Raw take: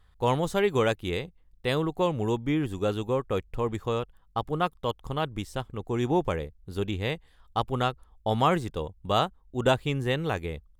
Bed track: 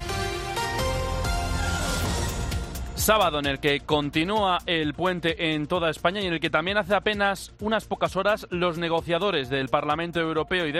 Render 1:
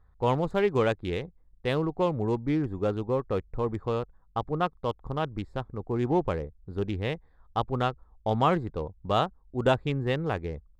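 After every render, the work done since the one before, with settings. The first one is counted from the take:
adaptive Wiener filter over 15 samples
low-pass filter 3,300 Hz 6 dB per octave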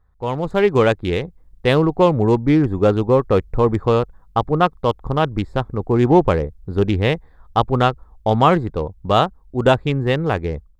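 automatic gain control gain up to 14 dB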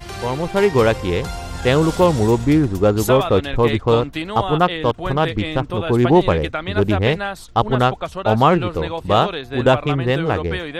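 mix in bed track −2 dB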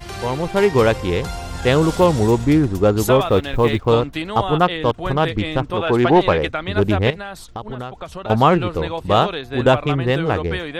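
0:03.26–0:03.87: mu-law and A-law mismatch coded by A
0:05.73–0:06.47: mid-hump overdrive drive 11 dB, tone 3,000 Hz, clips at −3 dBFS
0:07.10–0:08.30: downward compressor 5 to 1, threshold −26 dBFS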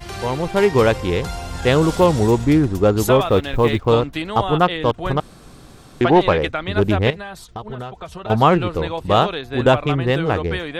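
0:05.20–0:06.01: fill with room tone
0:07.13–0:08.42: notch comb filter 280 Hz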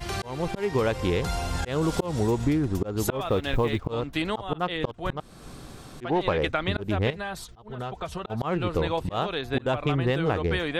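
volume swells 390 ms
downward compressor 12 to 1, threshold −20 dBFS, peak gain reduction 10.5 dB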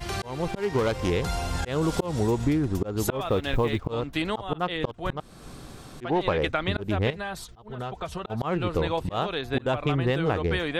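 0:00.49–0:01.10: phase distortion by the signal itself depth 0.16 ms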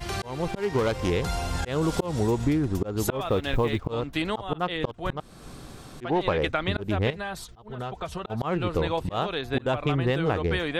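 no processing that can be heard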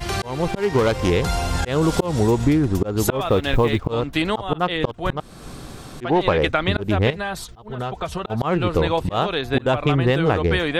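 level +6.5 dB

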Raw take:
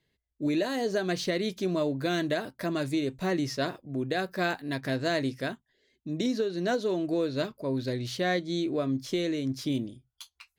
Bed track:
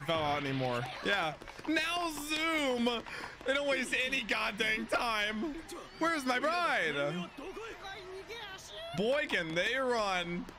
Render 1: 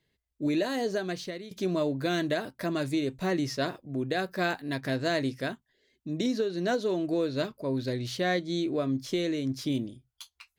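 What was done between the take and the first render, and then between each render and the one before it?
0:00.80–0:01.51: fade out, to −17 dB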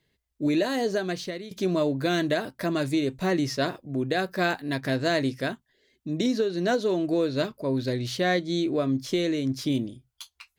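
level +3.5 dB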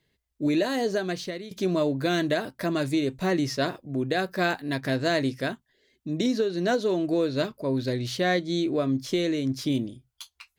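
no processing that can be heard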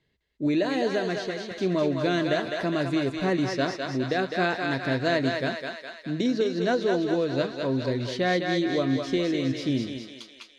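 high-frequency loss of the air 90 metres
feedback echo with a high-pass in the loop 206 ms, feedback 63%, high-pass 560 Hz, level −3 dB

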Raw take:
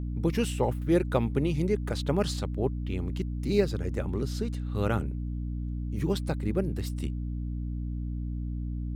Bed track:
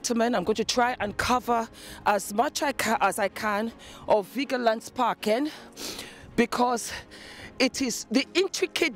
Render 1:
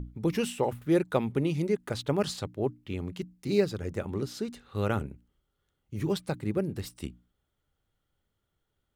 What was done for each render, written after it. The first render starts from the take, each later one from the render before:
mains-hum notches 60/120/180/240/300 Hz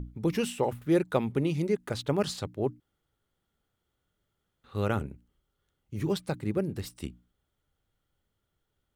0:02.80–0:04.64: fill with room tone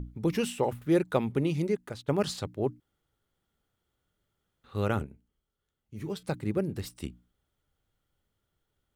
0:01.66–0:02.08: fade out linear, to −15.5 dB
0:05.04–0:06.23: tuned comb filter 220 Hz, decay 0.24 s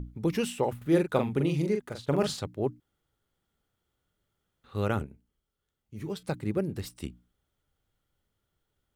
0:00.77–0:02.37: double-tracking delay 42 ms −5.5 dB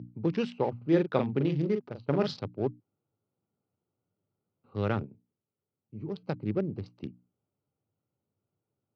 adaptive Wiener filter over 25 samples
Chebyshev band-pass filter 100–5,300 Hz, order 4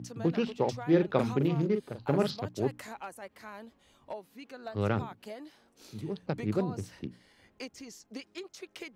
mix in bed track −19 dB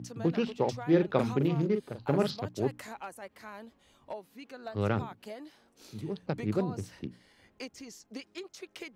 no processing that can be heard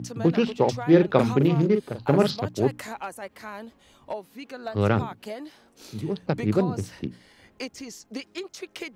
level +7.5 dB

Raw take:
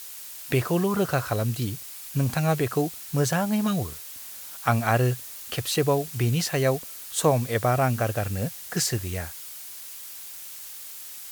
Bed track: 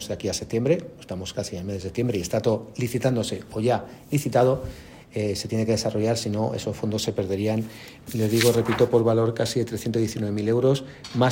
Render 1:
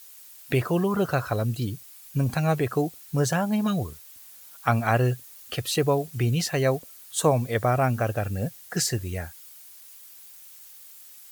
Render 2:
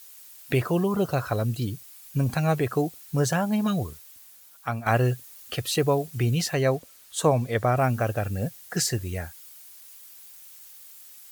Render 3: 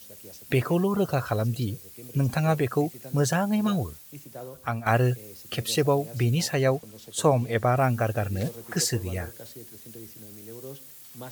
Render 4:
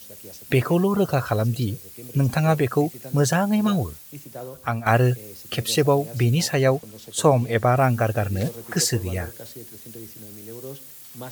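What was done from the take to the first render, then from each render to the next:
broadband denoise 10 dB, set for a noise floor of −40 dBFS
0:00.71–0:01.16: parametric band 1,600 Hz −3 dB → −12 dB; 0:03.90–0:04.86: fade out, to −9.5 dB; 0:06.54–0:07.77: high-shelf EQ 8,800 Hz −7 dB
mix in bed track −21.5 dB
level +4 dB

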